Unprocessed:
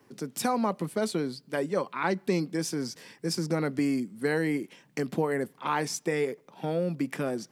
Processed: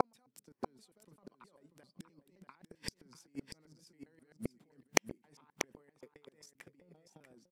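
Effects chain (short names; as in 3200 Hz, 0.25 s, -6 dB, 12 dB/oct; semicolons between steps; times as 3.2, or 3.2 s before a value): slices in reverse order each 0.131 s, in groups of 5; negative-ratio compressor -34 dBFS, ratio -1; flipped gate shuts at -32 dBFS, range -40 dB; transient shaper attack +11 dB, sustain -2 dB; on a send: echo 0.639 s -9 dB; on the sum: gain +8.5 dB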